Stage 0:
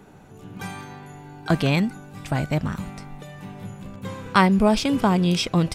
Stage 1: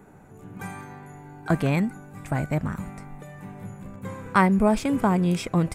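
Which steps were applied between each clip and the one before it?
high-order bell 4 kHz -10 dB 1.3 oct; trim -2 dB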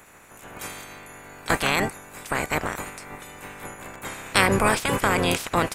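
spectral peaks clipped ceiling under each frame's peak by 29 dB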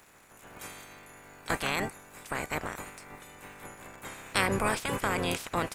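crackle 310 per s -41 dBFS; trim -8 dB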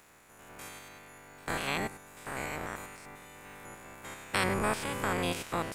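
spectrogram pixelated in time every 100 ms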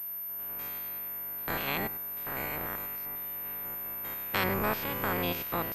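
class-D stage that switches slowly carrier 13 kHz

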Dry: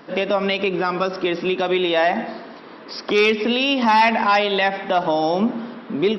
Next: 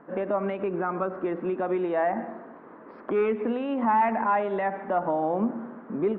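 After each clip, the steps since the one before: low-pass 1.6 kHz 24 dB/octave; trim -6.5 dB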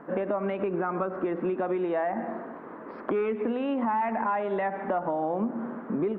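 compression 4:1, threshold -31 dBFS, peak gain reduction 11 dB; trim +5 dB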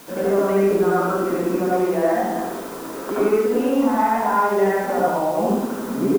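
added noise white -46 dBFS; delay 71 ms -5.5 dB; reverberation RT60 0.65 s, pre-delay 67 ms, DRR -5.5 dB

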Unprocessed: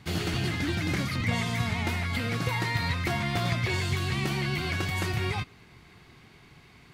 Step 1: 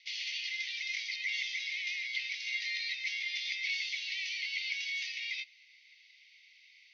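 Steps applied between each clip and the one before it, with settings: Chebyshev band-pass 2–6.1 kHz, order 5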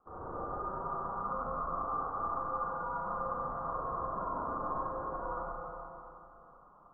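frequency inversion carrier 3.3 kHz; Schroeder reverb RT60 2.9 s, combs from 32 ms, DRR -9 dB; trim -8 dB

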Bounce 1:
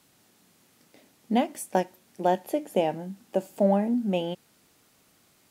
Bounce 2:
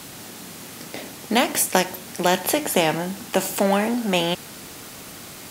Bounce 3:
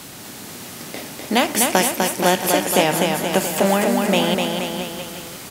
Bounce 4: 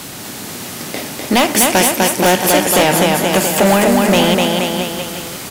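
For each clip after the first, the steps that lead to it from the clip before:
spectrum-flattening compressor 2:1; trim +7.5 dB
bouncing-ball echo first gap 250 ms, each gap 0.9×, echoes 5; trim +1.5 dB
overload inside the chain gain 14 dB; trim +7.5 dB

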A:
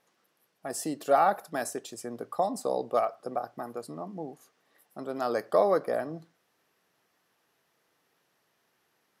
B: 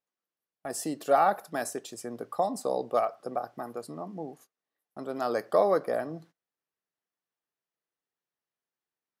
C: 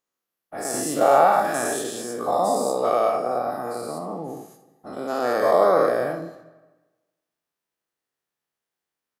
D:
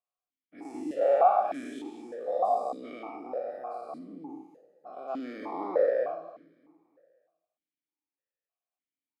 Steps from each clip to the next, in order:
gate -53 dBFS, range -23 dB
every event in the spectrogram widened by 240 ms; early reflections 57 ms -11 dB, 79 ms -15 dB; algorithmic reverb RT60 1.2 s, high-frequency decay 0.8×, pre-delay 95 ms, DRR 16.5 dB
feedback delay 288 ms, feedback 47%, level -20 dB; stepped vowel filter 3.3 Hz

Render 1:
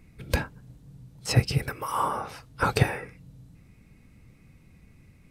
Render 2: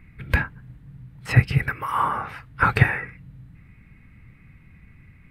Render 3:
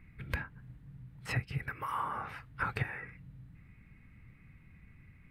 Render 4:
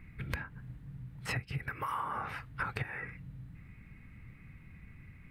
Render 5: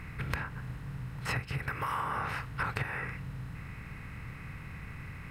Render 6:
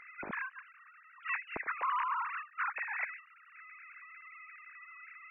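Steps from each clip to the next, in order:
FFT filter 130 Hz 0 dB, 540 Hz -9 dB, 1.9 kHz +6 dB, 5.9 kHz -18 dB, 14 kHz -10 dB; trim +5.5 dB
compression 3:1, threshold -26 dBFS, peak gain reduction 13 dB; trim -7.5 dB
compression 6:1, threshold -37 dBFS, peak gain reduction 10 dB; trim +4.5 dB
spectral levelling over time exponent 0.6
formants replaced by sine waves; trim -3 dB

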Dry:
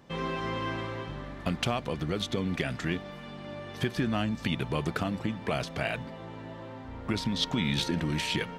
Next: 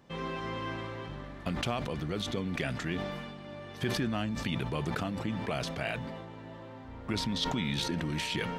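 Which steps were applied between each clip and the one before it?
decay stretcher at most 31 dB/s; trim -4 dB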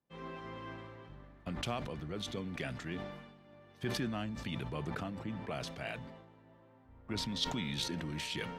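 three bands expanded up and down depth 70%; trim -6 dB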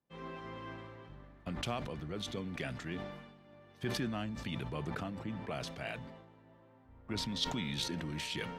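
no audible change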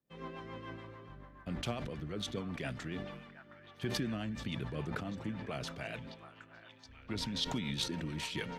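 rotary cabinet horn 7 Hz; repeats whose band climbs or falls 722 ms, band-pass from 1.2 kHz, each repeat 0.7 oct, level -8 dB; trim +2 dB

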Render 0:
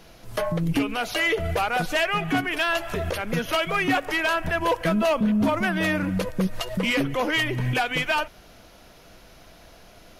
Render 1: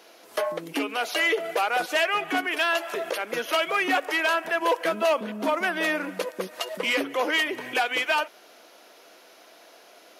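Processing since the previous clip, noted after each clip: high-pass 320 Hz 24 dB/octave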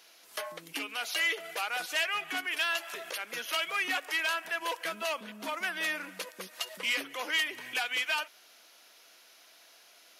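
amplifier tone stack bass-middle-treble 5-5-5; trim +4.5 dB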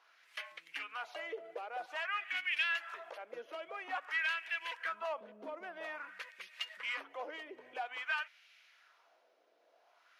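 LFO band-pass sine 0.5 Hz 460–2400 Hz; trim +1 dB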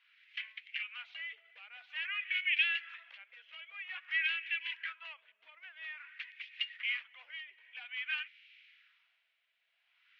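Butterworth band-pass 2.6 kHz, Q 1.7; trim +5 dB

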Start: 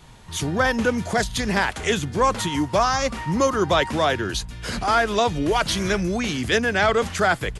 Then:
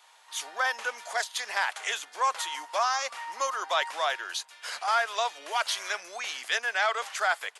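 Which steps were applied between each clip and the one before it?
high-pass 700 Hz 24 dB/octave; trim -5 dB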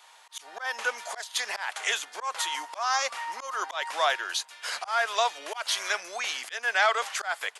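slow attack 207 ms; trim +3.5 dB

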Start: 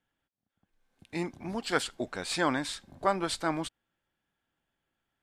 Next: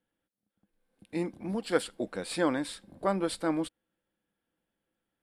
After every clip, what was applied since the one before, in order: graphic EQ with 31 bands 200 Hz +10 dB, 315 Hz +8 dB, 500 Hz +11 dB, 6.3 kHz -7 dB, 10 kHz +8 dB; trim -4.5 dB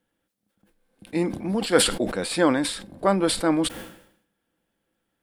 decay stretcher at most 83 dB/s; trim +7.5 dB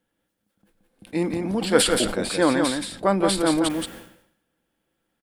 delay 174 ms -4.5 dB

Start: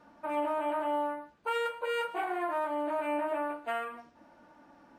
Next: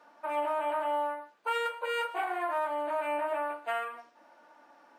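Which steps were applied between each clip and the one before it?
high-pass 510 Hz 12 dB/octave; trim +2 dB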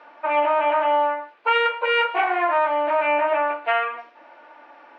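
FFT filter 210 Hz 0 dB, 340 Hz +8 dB, 1.6 kHz +9 dB, 2.4 kHz +14 dB, 4.5 kHz +2 dB, 11 kHz -23 dB; trim +2.5 dB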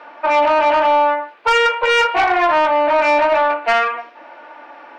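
saturation -17 dBFS, distortion -15 dB; trim +8.5 dB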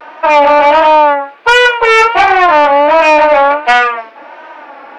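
vibrato 1.4 Hz 89 cents; trim +7.5 dB

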